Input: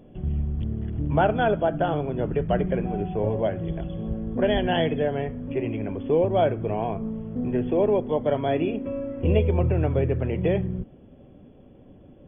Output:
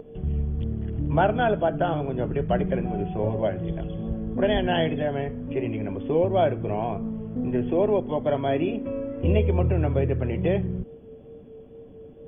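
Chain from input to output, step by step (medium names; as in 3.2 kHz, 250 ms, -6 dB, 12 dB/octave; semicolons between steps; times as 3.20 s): whistle 450 Hz -30 dBFS; wow and flutter 20 cents; band-stop 450 Hz, Q 14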